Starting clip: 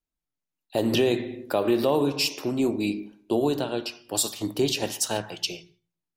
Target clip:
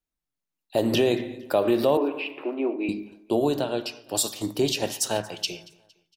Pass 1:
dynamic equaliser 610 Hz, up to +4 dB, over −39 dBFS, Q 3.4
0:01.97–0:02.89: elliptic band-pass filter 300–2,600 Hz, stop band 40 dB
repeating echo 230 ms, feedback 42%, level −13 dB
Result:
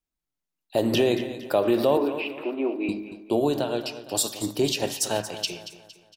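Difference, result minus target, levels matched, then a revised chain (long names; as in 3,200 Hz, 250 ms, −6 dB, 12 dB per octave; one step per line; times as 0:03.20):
echo-to-direct +10 dB
dynamic equaliser 610 Hz, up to +4 dB, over −39 dBFS, Q 3.4
0:01.97–0:02.89: elliptic band-pass filter 300–2,600 Hz, stop band 40 dB
repeating echo 230 ms, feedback 42%, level −23 dB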